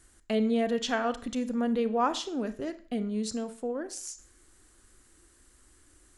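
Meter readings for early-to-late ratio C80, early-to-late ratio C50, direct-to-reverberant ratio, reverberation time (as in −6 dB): 18.5 dB, 14.5 dB, 11.0 dB, 0.50 s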